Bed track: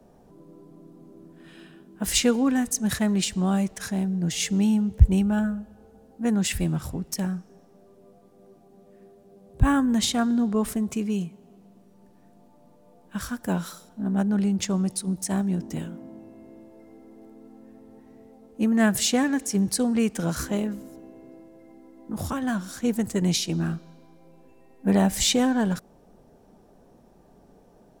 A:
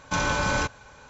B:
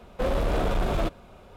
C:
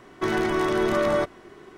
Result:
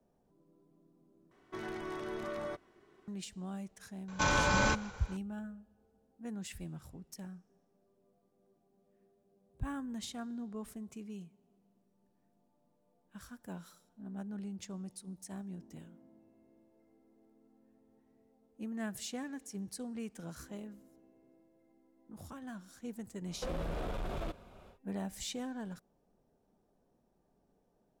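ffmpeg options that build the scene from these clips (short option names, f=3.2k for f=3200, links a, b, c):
-filter_complex "[0:a]volume=-19dB[a];[1:a]asplit=5[b][c][d][e][f];[c]adelay=158,afreqshift=-48,volume=-21.5dB[g];[d]adelay=316,afreqshift=-96,volume=-26.9dB[h];[e]adelay=474,afreqshift=-144,volume=-32.2dB[i];[f]adelay=632,afreqshift=-192,volume=-37.6dB[j];[b][g][h][i][j]amix=inputs=5:normalize=0[k];[2:a]acompressor=threshold=-28dB:ratio=6:attack=3.2:release=140:knee=1:detection=peak[l];[a]asplit=2[m][n];[m]atrim=end=1.314[o];[3:a]atrim=end=1.77,asetpts=PTS-STARTPTS,volume=-17.5dB[p];[n]atrim=start=3.076[q];[k]atrim=end=1.09,asetpts=PTS-STARTPTS,volume=-4dB,afade=t=in:d=0.004:c=hsin,afade=t=out:st=1.086:d=0.004:c=hsin,adelay=4080[r];[l]atrim=end=1.56,asetpts=PTS-STARTPTS,volume=-7dB,afade=t=in:d=0.1,afade=t=out:st=1.46:d=0.1,adelay=23230[s];[o][p]acrossfade=d=0.004:c1=hsin:c2=hsin[t];[t][q]acrossfade=d=0.004:c1=hsin:c2=hsin[u];[u][r][s]amix=inputs=3:normalize=0"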